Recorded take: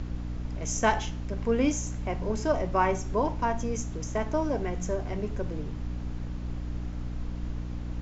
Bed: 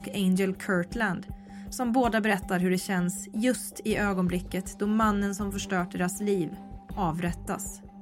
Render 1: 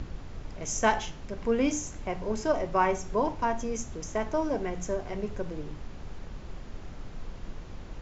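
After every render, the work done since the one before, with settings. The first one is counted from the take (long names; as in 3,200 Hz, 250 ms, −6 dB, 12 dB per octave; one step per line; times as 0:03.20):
mains-hum notches 60/120/180/240/300 Hz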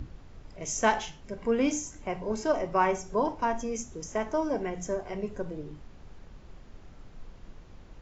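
noise reduction from a noise print 8 dB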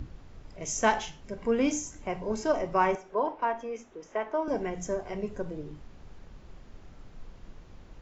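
0:02.95–0:04.48: three-way crossover with the lows and the highs turned down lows −19 dB, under 300 Hz, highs −24 dB, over 3,600 Hz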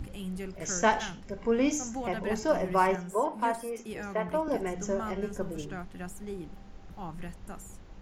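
mix in bed −12.5 dB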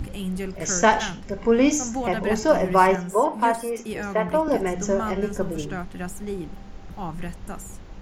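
level +8 dB
brickwall limiter −3 dBFS, peak gain reduction 2 dB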